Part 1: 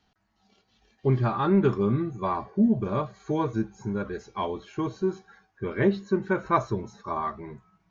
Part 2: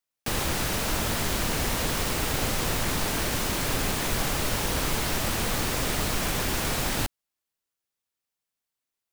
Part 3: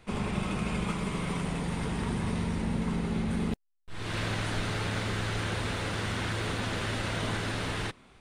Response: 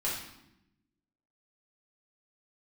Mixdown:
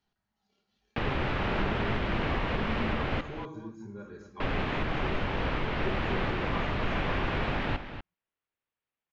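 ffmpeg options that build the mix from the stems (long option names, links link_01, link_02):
-filter_complex "[0:a]volume=-15dB,asplit=3[link_01][link_02][link_03];[link_02]volume=-6.5dB[link_04];[link_03]volume=-9dB[link_05];[1:a]lowpass=frequency=2900:width=0.5412,lowpass=frequency=2900:width=1.3066,alimiter=limit=-20dB:level=0:latency=1:release=418,adelay=700,volume=0.5dB,asplit=3[link_06][link_07][link_08];[link_06]atrim=end=3.21,asetpts=PTS-STARTPTS,afade=type=out:start_time=3.206:duration=0.004:curve=hsin[link_09];[link_07]atrim=start=3.21:end=4.4,asetpts=PTS-STARTPTS,volume=0[link_10];[link_08]atrim=start=4.4,asetpts=PTS-STARTPTS,afade=type=in:duration=0.004:curve=hsin[link_11];[link_09][link_10][link_11]concat=n=3:v=0:a=1,asplit=2[link_12][link_13];[link_13]volume=-10.5dB[link_14];[link_01]acompressor=threshold=-47dB:ratio=6,volume=0dB[link_15];[3:a]atrim=start_sample=2205[link_16];[link_04][link_16]afir=irnorm=-1:irlink=0[link_17];[link_05][link_14]amix=inputs=2:normalize=0,aecho=0:1:244:1[link_18];[link_12][link_15][link_17][link_18]amix=inputs=4:normalize=0"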